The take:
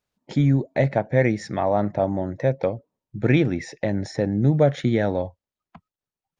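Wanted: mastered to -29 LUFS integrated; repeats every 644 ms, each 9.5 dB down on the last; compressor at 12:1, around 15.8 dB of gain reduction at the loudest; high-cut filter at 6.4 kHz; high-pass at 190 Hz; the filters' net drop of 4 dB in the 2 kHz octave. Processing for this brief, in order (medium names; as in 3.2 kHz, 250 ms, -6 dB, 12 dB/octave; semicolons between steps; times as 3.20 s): high-pass 190 Hz; low-pass 6.4 kHz; peaking EQ 2 kHz -4.5 dB; compression 12:1, threshold -30 dBFS; feedback delay 644 ms, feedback 33%, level -9.5 dB; trim +7 dB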